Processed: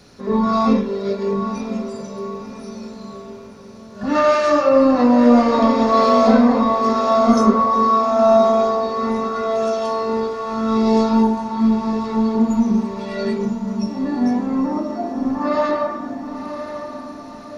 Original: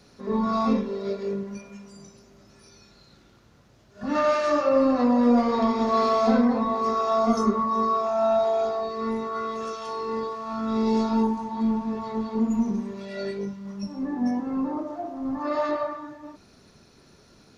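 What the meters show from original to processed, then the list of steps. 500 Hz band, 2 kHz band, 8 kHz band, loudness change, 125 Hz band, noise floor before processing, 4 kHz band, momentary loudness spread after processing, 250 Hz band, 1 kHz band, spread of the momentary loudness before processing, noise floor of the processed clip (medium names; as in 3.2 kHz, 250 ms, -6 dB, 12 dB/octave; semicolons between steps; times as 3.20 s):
+8.0 dB, +7.5 dB, no reading, +7.5 dB, +8.0 dB, -56 dBFS, +7.5 dB, 16 LU, +8.0 dB, +7.5 dB, 13 LU, -37 dBFS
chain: on a send: echo that smears into a reverb 1020 ms, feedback 47%, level -9 dB; on the sum: trim +7 dB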